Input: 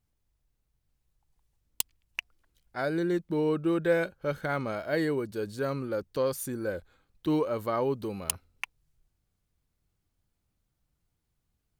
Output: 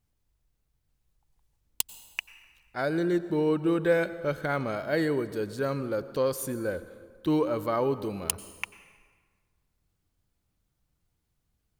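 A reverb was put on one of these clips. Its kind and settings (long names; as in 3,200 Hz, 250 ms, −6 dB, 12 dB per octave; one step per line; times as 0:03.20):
dense smooth reverb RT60 1.6 s, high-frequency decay 0.7×, pre-delay 80 ms, DRR 14.5 dB
level +1.5 dB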